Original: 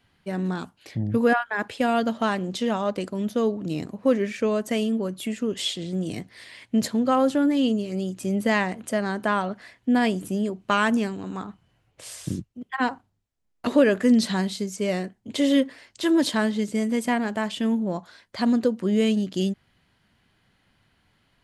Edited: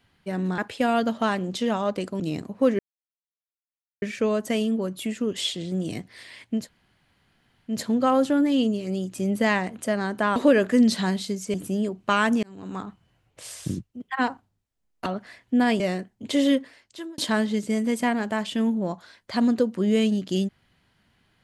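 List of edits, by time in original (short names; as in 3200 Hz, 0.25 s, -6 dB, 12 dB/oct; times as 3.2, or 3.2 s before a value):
0.58–1.58 cut
3.2–3.64 cut
4.23 insert silence 1.23 s
6.79 insert room tone 1.16 s, crossfade 0.24 s
9.41–10.15 swap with 13.67–14.85
11.04–11.37 fade in
15.49–16.23 fade out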